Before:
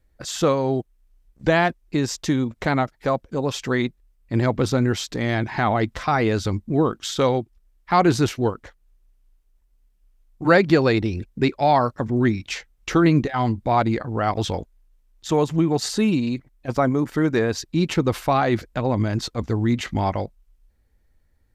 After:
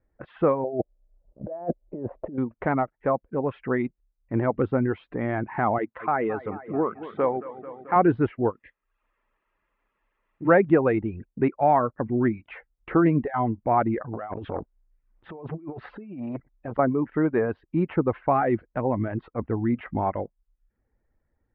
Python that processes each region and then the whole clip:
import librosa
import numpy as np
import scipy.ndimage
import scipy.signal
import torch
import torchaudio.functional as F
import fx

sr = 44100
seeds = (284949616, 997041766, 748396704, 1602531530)

y = fx.chain(x, sr, fx.over_compress(threshold_db=-27.0, ratio=-0.5),
    fx.lowpass_res(hz=600.0, q=5.7), at=(0.64, 2.38))
y = fx.chain(y, sr, fx.highpass(hz=350.0, slope=6),
    fx.air_absorb(metres=70.0),
    fx.echo_wet_lowpass(ms=219, feedback_pct=66, hz=2800.0, wet_db=-12), at=(5.78, 7.96))
y = fx.curve_eq(y, sr, hz=(280.0, 1100.0, 2300.0), db=(0, -18, 11), at=(8.51, 10.47), fade=0.02)
y = fx.dmg_noise_colour(y, sr, seeds[0], colour='blue', level_db=-52.0, at=(8.51, 10.47), fade=0.02)
y = fx.notch_comb(y, sr, f0_hz=750.0, at=(8.51, 10.47), fade=0.02)
y = fx.chain(y, sr, fx.over_compress(threshold_db=-26.0, ratio=-0.5),
    fx.transformer_sat(knee_hz=730.0), at=(14.13, 16.79))
y = scipy.signal.sosfilt(scipy.signal.bessel(8, 1300.0, 'lowpass', norm='mag', fs=sr, output='sos'), y)
y = fx.dereverb_blind(y, sr, rt60_s=0.53)
y = fx.low_shelf(y, sr, hz=130.0, db=-10.5)